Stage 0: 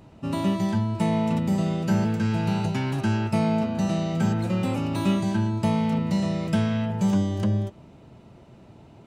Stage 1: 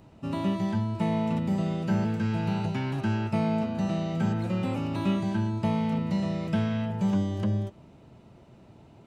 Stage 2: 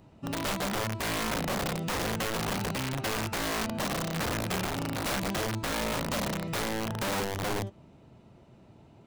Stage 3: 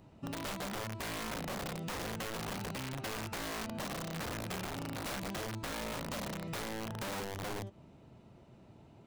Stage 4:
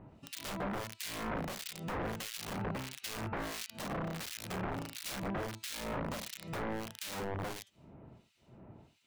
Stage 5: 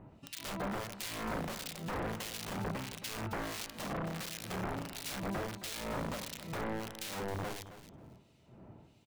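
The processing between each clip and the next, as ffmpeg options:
-filter_complex "[0:a]acrossover=split=4300[s0][s1];[s1]acompressor=threshold=0.002:ratio=4:attack=1:release=60[s2];[s0][s2]amix=inputs=2:normalize=0,volume=0.668"
-af "aeval=exprs='(mod(15*val(0)+1,2)-1)/15':c=same,volume=0.75"
-af "acompressor=threshold=0.0178:ratio=6,volume=0.75"
-filter_complex "[0:a]acrossover=split=2200[s0][s1];[s0]aeval=exprs='val(0)*(1-1/2+1/2*cos(2*PI*1.5*n/s))':c=same[s2];[s1]aeval=exprs='val(0)*(1-1/2-1/2*cos(2*PI*1.5*n/s))':c=same[s3];[s2][s3]amix=inputs=2:normalize=0,volume=1.68"
-af "aecho=1:1:269|538:0.224|0.0381"

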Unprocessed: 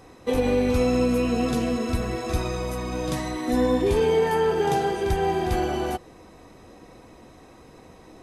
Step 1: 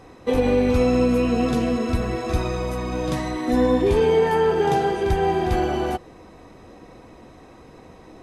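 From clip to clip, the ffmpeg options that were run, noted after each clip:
-af "highshelf=f=5700:g=-8.5,volume=1.41"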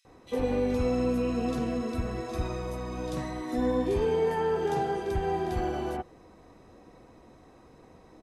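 -filter_complex "[0:a]acrossover=split=2700[s0][s1];[s0]adelay=50[s2];[s2][s1]amix=inputs=2:normalize=0,volume=0.376"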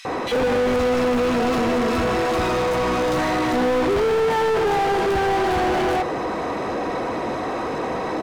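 -filter_complex "[0:a]asplit=2[s0][s1];[s1]highpass=f=720:p=1,volume=112,asoftclip=type=tanh:threshold=0.141[s2];[s0][s2]amix=inputs=2:normalize=0,lowpass=f=1700:p=1,volume=0.501,volume=1.5"

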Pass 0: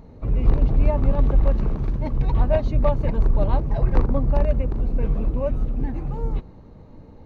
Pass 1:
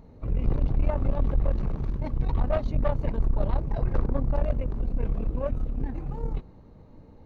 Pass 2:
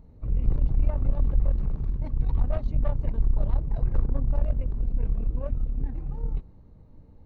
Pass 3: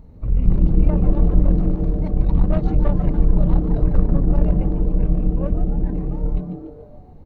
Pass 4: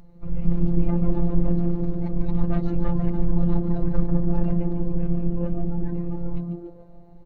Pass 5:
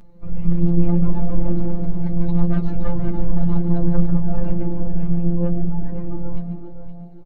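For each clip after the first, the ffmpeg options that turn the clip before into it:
-af "aeval=exprs='(tanh(5.62*val(0)+0.65)-tanh(0.65))/5.62':c=same,volume=0.794"
-af "lowshelf=f=160:g=11,volume=0.376"
-filter_complex "[0:a]asplit=6[s0][s1][s2][s3][s4][s5];[s1]adelay=145,afreqshift=140,volume=0.299[s6];[s2]adelay=290,afreqshift=280,volume=0.14[s7];[s3]adelay=435,afreqshift=420,volume=0.0661[s8];[s4]adelay=580,afreqshift=560,volume=0.0309[s9];[s5]adelay=725,afreqshift=700,volume=0.0146[s10];[s0][s6][s7][s8][s9][s10]amix=inputs=6:normalize=0,volume=2.24"
-af "afftfilt=real='hypot(re,im)*cos(PI*b)':imag='0':win_size=1024:overlap=0.75"
-af "flanger=delay=9:depth=2.9:regen=30:speed=0.65:shape=triangular,aecho=1:1:518:0.299,volume=1.88"

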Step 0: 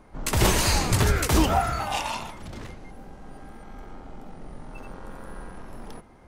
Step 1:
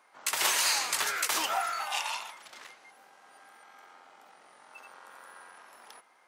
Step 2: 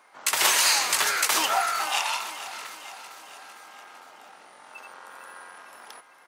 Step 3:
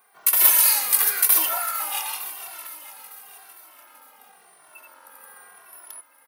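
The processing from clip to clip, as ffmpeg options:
-af "highpass=1100,volume=0.891"
-af "aecho=1:1:454|908|1362|1816|2270|2724:0.2|0.118|0.0695|0.041|0.0242|0.0143,volume=2"
-filter_complex "[0:a]aexciter=amount=15.1:drive=1.9:freq=10000,asplit=2[s0][s1];[s1]adelay=2.1,afreqshift=-0.92[s2];[s0][s2]amix=inputs=2:normalize=1,volume=0.75"

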